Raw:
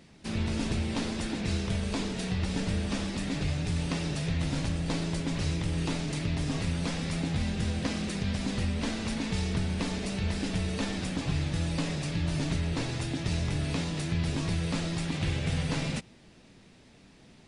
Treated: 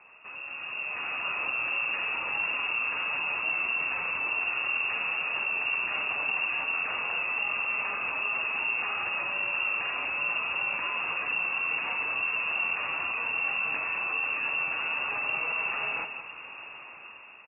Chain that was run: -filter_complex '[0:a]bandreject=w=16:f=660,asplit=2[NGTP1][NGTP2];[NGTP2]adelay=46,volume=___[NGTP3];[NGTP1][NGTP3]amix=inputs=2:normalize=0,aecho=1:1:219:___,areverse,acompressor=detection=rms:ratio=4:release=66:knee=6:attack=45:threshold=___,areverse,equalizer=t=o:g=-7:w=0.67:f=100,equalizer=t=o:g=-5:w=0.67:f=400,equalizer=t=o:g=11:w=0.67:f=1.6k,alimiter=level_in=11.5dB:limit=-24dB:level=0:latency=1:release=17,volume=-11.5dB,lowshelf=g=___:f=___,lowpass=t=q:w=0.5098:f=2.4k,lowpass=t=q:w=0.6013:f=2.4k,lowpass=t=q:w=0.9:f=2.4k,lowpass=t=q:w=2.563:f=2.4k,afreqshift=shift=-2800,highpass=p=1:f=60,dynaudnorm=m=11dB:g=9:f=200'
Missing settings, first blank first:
-10dB, 0.0794, -40dB, 6, 120